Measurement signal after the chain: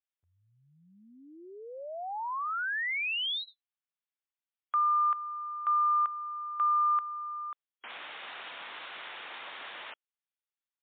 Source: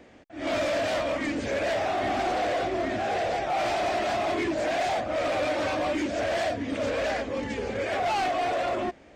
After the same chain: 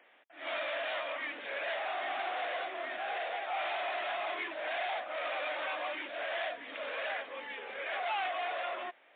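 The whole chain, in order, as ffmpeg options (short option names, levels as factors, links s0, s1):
-af "highpass=940,volume=0.708" -ar 8000 -c:a libmp3lame -b:a 64k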